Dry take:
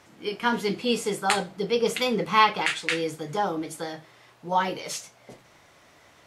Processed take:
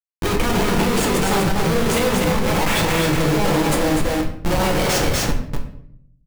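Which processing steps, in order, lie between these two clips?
negative-ratio compressor -30 dBFS, ratio -1; Schmitt trigger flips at -32.5 dBFS; echo 0.245 s -3.5 dB; shoebox room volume 120 m³, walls mixed, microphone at 0.68 m; maximiser +20.5 dB; gain -8.5 dB

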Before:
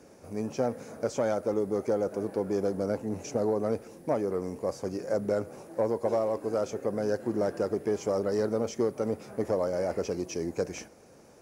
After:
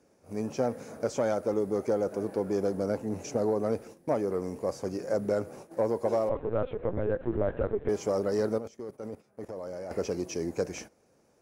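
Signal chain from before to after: 6.29–7.89 LPC vocoder at 8 kHz pitch kept; 8.58–9.91 level quantiser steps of 19 dB; gate -45 dBFS, range -11 dB

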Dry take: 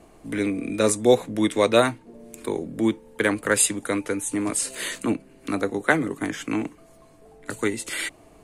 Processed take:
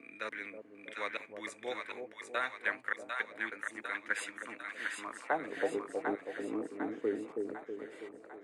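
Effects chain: slices in reverse order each 0.293 s, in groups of 3; band-pass sweep 1800 Hz -> 440 Hz, 4.77–5.76; split-band echo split 680 Hz, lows 0.322 s, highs 0.749 s, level -4 dB; gain -5.5 dB

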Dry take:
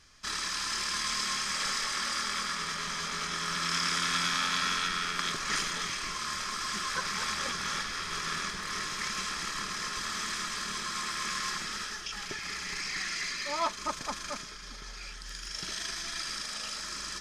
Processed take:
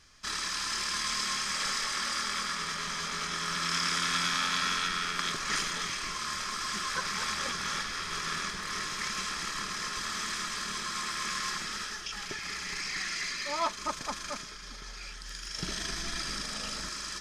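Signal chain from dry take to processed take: 15.58–16.89 low shelf 500 Hz +11 dB

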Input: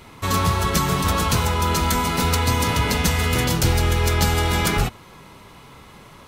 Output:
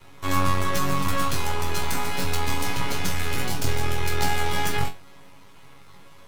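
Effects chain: half-wave rectifier; resonator bank F#2 fifth, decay 0.22 s; gain +7 dB

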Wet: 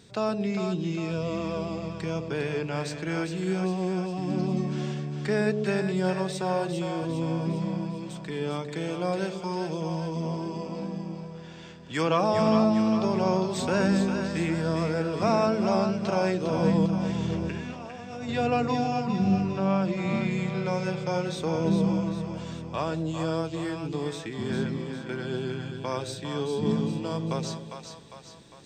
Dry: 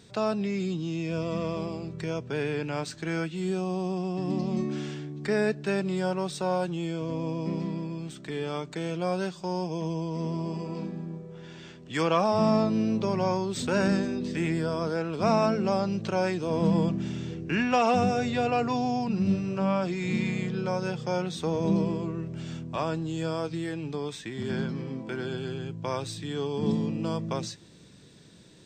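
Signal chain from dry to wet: 16.86–18.29 negative-ratio compressor -36 dBFS, ratio -1; 19–20.31 high shelf 7200 Hz -11.5 dB; split-band echo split 550 Hz, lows 0.123 s, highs 0.403 s, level -6.5 dB

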